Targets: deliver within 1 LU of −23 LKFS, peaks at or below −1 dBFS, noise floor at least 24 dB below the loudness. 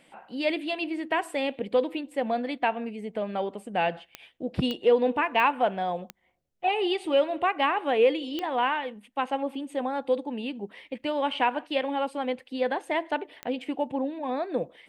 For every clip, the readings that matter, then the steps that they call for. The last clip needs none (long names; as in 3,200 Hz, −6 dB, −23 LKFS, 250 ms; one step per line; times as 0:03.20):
number of clicks 6; integrated loudness −28.0 LKFS; sample peak −10.0 dBFS; target loudness −23.0 LKFS
→ click removal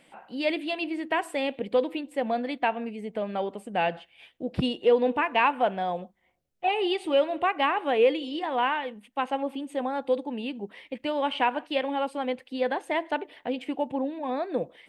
number of clicks 0; integrated loudness −28.0 LKFS; sample peak −10.0 dBFS; target loudness −23.0 LKFS
→ level +5 dB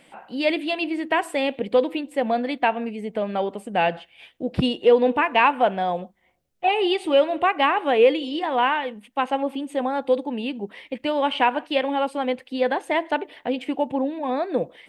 integrated loudness −23.0 LKFS; sample peak −5.0 dBFS; background noise floor −61 dBFS